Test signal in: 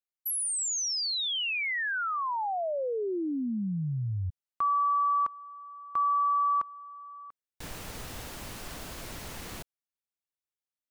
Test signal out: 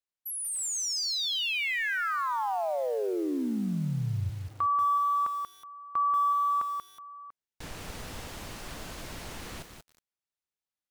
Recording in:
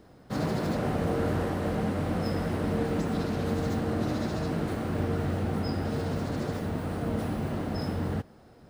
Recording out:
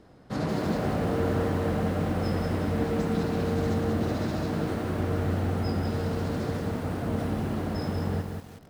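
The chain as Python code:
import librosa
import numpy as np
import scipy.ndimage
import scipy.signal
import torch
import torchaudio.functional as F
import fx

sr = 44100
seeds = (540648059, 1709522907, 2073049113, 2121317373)

y = fx.high_shelf(x, sr, hz=12000.0, db=-11.0)
y = fx.echo_crushed(y, sr, ms=185, feedback_pct=35, bits=8, wet_db=-5.0)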